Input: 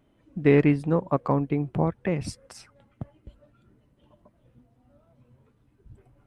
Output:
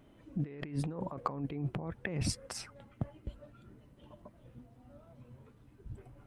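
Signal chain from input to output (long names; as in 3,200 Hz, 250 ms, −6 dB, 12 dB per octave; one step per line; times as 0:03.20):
compressor whose output falls as the input rises −33 dBFS, ratio −1
level −4.5 dB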